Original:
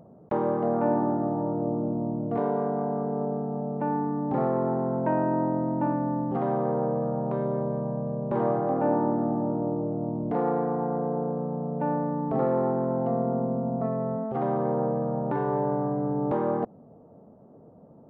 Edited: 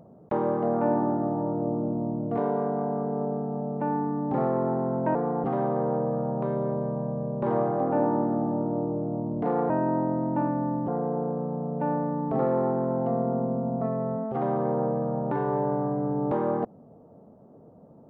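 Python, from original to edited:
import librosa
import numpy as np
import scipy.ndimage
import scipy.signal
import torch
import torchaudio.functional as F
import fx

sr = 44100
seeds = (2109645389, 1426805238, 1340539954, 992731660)

y = fx.edit(x, sr, fx.swap(start_s=5.15, length_s=1.18, other_s=10.59, other_length_s=0.29), tone=tone)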